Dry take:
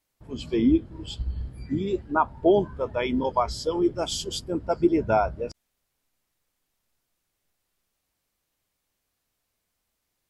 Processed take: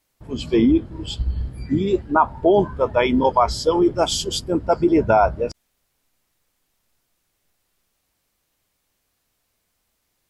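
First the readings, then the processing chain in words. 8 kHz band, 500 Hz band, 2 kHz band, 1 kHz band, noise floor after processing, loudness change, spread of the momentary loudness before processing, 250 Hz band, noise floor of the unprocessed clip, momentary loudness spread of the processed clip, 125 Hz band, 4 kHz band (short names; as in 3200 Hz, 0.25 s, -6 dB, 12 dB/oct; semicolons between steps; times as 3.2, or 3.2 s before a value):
+7.0 dB, +6.5 dB, +7.0 dB, +7.5 dB, -72 dBFS, +6.0 dB, 13 LU, +5.0 dB, -79 dBFS, 11 LU, +6.5 dB, +7.0 dB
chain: dynamic EQ 920 Hz, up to +5 dB, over -33 dBFS, Q 1; in parallel at -0.5 dB: negative-ratio compressor -20 dBFS, ratio -0.5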